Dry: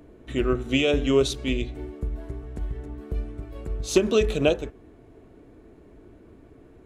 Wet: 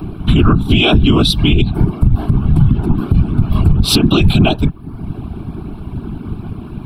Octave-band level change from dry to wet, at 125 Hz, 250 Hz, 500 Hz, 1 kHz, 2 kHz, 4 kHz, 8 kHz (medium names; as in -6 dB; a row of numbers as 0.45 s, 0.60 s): +21.5 dB, +14.0 dB, +2.0 dB, +14.5 dB, +10.0 dB, +15.5 dB, +8.0 dB